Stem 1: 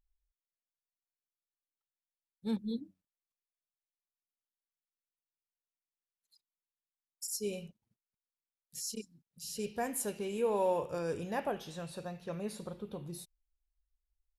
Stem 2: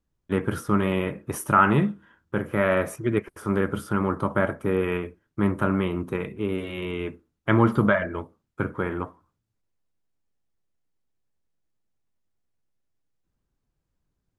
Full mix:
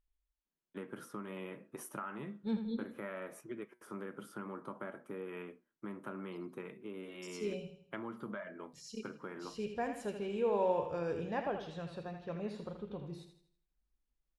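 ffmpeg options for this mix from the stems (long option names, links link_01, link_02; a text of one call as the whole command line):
ffmpeg -i stem1.wav -i stem2.wav -filter_complex "[0:a]lowpass=3500,volume=-1.5dB,asplit=2[link_01][link_02];[link_02]volume=-8.5dB[link_03];[1:a]highpass=frequency=170:width=0.5412,highpass=frequency=170:width=1.3066,acompressor=threshold=-26dB:ratio=5,flanger=delay=7.6:depth=1.1:regen=82:speed=1.6:shape=triangular,adelay=450,volume=-9.5dB[link_04];[link_03]aecho=0:1:81|162|243|324|405|486:1|0.4|0.16|0.064|0.0256|0.0102[link_05];[link_01][link_04][link_05]amix=inputs=3:normalize=0" out.wav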